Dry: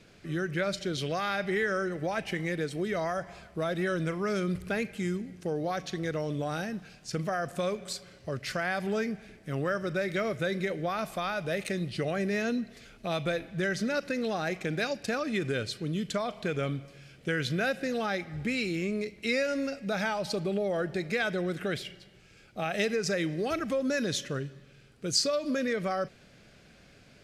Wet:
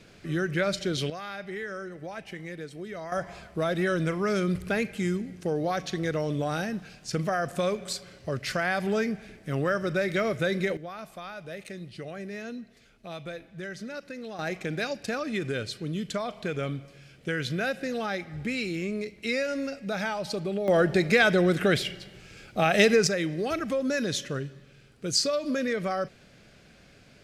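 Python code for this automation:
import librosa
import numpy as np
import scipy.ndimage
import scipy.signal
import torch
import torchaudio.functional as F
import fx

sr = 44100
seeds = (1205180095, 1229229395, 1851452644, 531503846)

y = fx.gain(x, sr, db=fx.steps((0.0, 3.5), (1.1, -7.0), (3.12, 3.5), (10.77, -8.0), (14.39, 0.0), (20.68, 9.0), (23.07, 1.5)))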